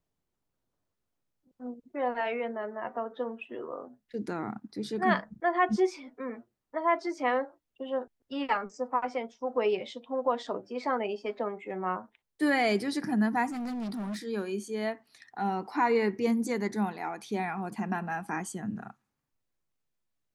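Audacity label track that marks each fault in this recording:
13.480000	14.170000	clipping −32.5 dBFS

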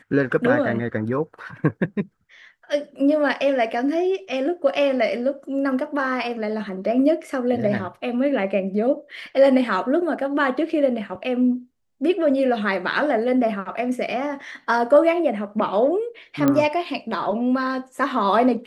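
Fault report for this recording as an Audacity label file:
16.480000	16.480000	click −7 dBFS

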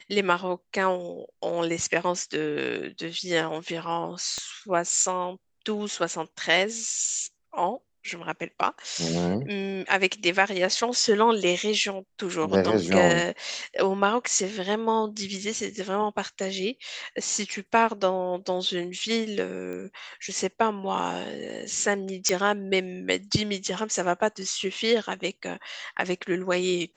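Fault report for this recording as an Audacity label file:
4.380000	4.380000	click −19 dBFS
19.730000	19.730000	click −25 dBFS
22.290000	22.290000	click −8 dBFS

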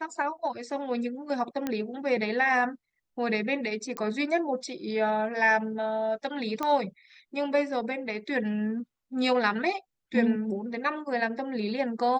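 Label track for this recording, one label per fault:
1.670000	1.670000	click −16 dBFS
3.970000	3.970000	click −18 dBFS
6.630000	6.630000	click −16 dBFS

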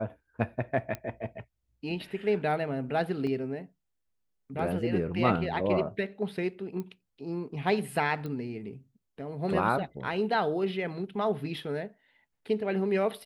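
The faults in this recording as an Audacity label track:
0.950000	0.950000	click −21 dBFS
3.270000	3.270000	drop-out 2.8 ms
6.800000	6.800000	click −25 dBFS
8.260000	8.260000	click −26 dBFS

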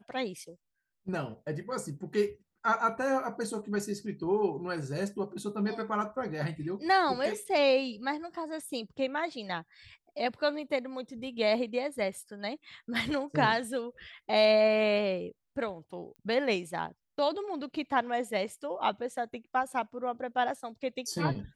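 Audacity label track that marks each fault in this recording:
16.160000	16.160000	click −38 dBFS

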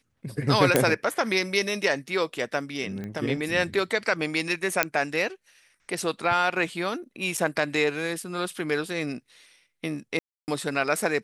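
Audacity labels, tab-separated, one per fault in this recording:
0.760000	0.760000	click −4 dBFS
3.040000	3.040000	click −23 dBFS
4.830000	4.830000	click −3 dBFS
7.370000	7.380000	drop-out 6.3 ms
10.190000	10.480000	drop-out 289 ms

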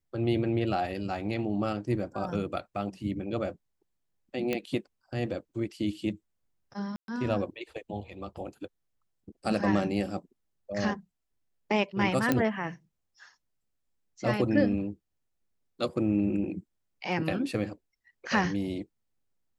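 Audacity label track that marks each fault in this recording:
4.530000	4.530000	click −16 dBFS
6.960000	7.080000	drop-out 122 ms
12.320000	12.320000	click −11 dBFS

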